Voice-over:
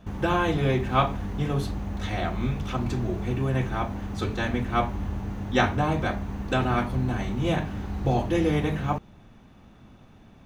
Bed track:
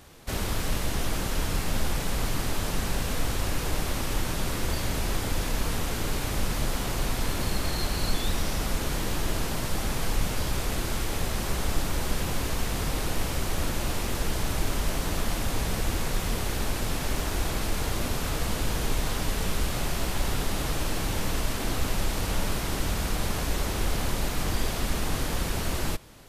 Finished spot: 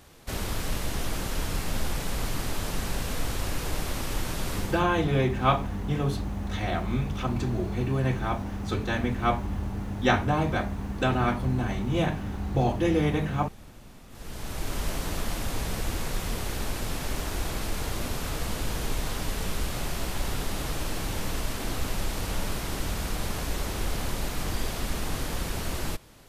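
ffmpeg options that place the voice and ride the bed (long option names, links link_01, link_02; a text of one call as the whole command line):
ffmpeg -i stem1.wav -i stem2.wav -filter_complex "[0:a]adelay=4500,volume=-0.5dB[link_01];[1:a]volume=18.5dB,afade=type=out:start_time=4.56:duration=0.28:silence=0.0891251,afade=type=in:start_time=14.09:duration=0.73:silence=0.0944061[link_02];[link_01][link_02]amix=inputs=2:normalize=0" out.wav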